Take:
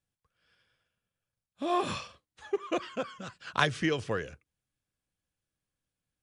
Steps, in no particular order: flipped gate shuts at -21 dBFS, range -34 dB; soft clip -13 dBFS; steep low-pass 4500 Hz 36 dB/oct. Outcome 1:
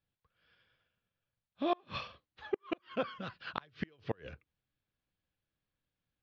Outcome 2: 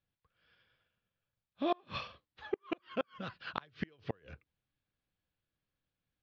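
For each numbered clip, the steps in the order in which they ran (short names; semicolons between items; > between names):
soft clip > steep low-pass > flipped gate; steep low-pass > flipped gate > soft clip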